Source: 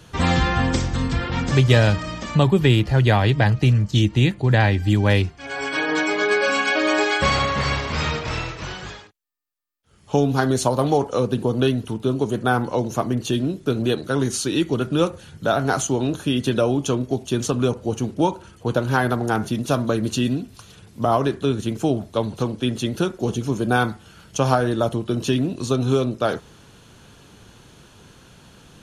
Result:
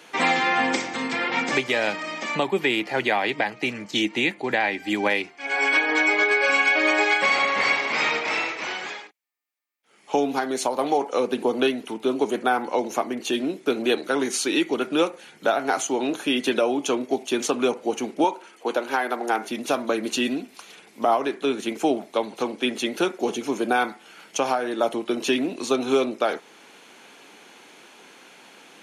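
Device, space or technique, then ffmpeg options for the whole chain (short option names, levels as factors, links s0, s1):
laptop speaker: -filter_complex "[0:a]highpass=f=260:w=0.5412,highpass=f=260:w=1.3066,equalizer=f=800:t=o:w=0.44:g=5.5,equalizer=f=2200:t=o:w=0.49:g=11,alimiter=limit=0.316:level=0:latency=1:release=446,asettb=1/sr,asplit=3[s0][s1][s2];[s0]atrim=end=18.244[s3];[s1]atrim=start=18.24:end=19.5,asetpts=PTS-STARTPTS,afade=t=in:d=0.004:c=qsin,afade=t=out:st=1.256:d=0.004:c=qsin,highpass=260[s4];[s2]atrim=start=19.496[s5];[s3][s4]acrossfade=d=0.004:c1=hsin:c2=qsin[s6];[s6][s5]acrossfade=d=0.004:c1=qsin:c2=hsin"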